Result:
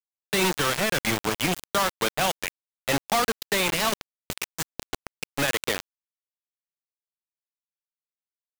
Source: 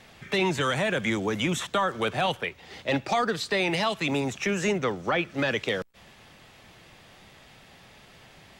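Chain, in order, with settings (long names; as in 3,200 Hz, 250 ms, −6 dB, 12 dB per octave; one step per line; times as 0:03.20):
0:03.92–0:05.26: compressor whose output falls as the input rises −32 dBFS, ratio −0.5
bit reduction 4 bits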